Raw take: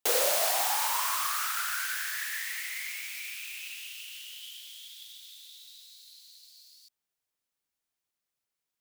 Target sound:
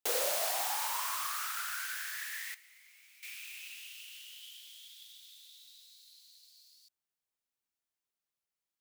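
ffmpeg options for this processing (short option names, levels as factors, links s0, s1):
-filter_complex "[0:a]asettb=1/sr,asplit=3[s0][s1][s2];[s0]atrim=end=2.544[s3];[s1]atrim=start=2.54:end=3.23,asetpts=PTS-STARTPTS,afade=t=in:d=0.004:c=qsin,afade=t=out:st=0.686:d=0.004:c=qsin,acrossover=split=270[s4][s5];[s5]acompressor=threshold=0.002:ratio=5[s6];[s4][s6]amix=inputs=2:normalize=0[s7];[s2]atrim=start=3.226[s8];[s3][s7]acrossfade=d=0.004:c1=hsin:c2=qsin[s9];[s9][s8]acrossfade=d=0.004:c1=qsin:c2=hsin,asettb=1/sr,asplit=3[s10][s11][s12];[s10]atrim=end=5.274[s13];[s11]atrim=start=5.27:end=5.69,asetpts=PTS-STARTPTS,afade=t=in:d=0.004:c=qsin,afade=t=out:st=0.416:d=0.004:c=qsin,highpass=190[s14];[s12]atrim=start=5.686[s15];[s13][s14]acrossfade=d=0.004:c1=hsin:c2=qsin[s16];[s16][s15]acrossfade=d=0.004:c1=qsin:c2=hsin,volume=0.501"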